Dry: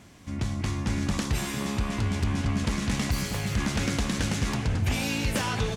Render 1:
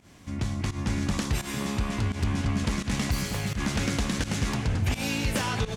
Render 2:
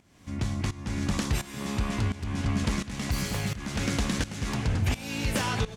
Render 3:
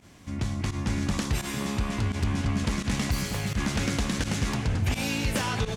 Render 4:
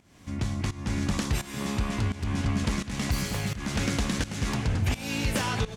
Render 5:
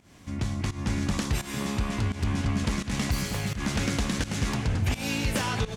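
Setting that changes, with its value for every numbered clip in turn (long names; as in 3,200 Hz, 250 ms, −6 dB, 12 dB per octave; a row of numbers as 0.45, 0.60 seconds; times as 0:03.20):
fake sidechain pumping, release: 121, 535, 67, 347, 191 milliseconds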